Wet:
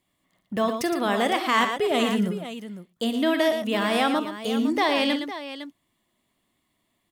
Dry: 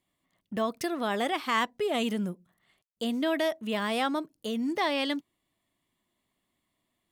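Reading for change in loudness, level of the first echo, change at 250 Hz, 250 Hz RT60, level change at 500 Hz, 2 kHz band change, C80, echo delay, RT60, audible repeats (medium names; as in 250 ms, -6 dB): +6.0 dB, -15.5 dB, +6.5 dB, no reverb, +6.0 dB, +6.0 dB, no reverb, 44 ms, no reverb, 3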